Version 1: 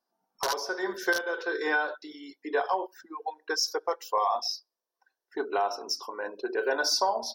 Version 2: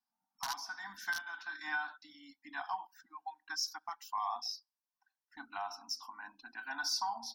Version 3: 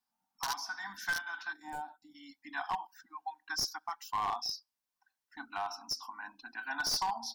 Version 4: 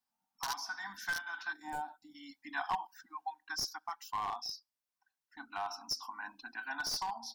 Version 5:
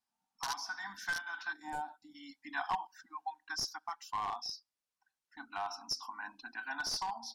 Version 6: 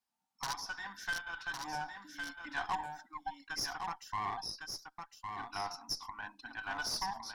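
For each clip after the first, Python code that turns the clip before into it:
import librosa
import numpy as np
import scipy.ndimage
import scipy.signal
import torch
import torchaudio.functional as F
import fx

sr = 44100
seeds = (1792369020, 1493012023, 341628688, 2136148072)

y1 = scipy.signal.sosfilt(scipy.signal.ellip(3, 1.0, 40, [270.0, 780.0], 'bandstop', fs=sr, output='sos'), x)
y1 = y1 * 10.0 ** (-8.0 / 20.0)
y2 = np.minimum(y1, 2.0 * 10.0 ** (-31.0 / 20.0) - y1)
y2 = fx.spec_box(y2, sr, start_s=1.53, length_s=0.62, low_hz=950.0, high_hz=6800.0, gain_db=-18)
y2 = y2 * 10.0 ** (3.5 / 20.0)
y3 = fx.rider(y2, sr, range_db=3, speed_s=0.5)
y3 = y3 * 10.0 ** (-1.5 / 20.0)
y4 = scipy.signal.sosfilt(scipy.signal.butter(2, 11000.0, 'lowpass', fs=sr, output='sos'), y3)
y5 = fx.cheby_harmonics(y4, sr, harmonics=(8,), levels_db=(-23,), full_scale_db=-21.5)
y5 = y5 + 10.0 ** (-5.5 / 20.0) * np.pad(y5, (int(1108 * sr / 1000.0), 0))[:len(y5)]
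y5 = y5 * 10.0 ** (-1.0 / 20.0)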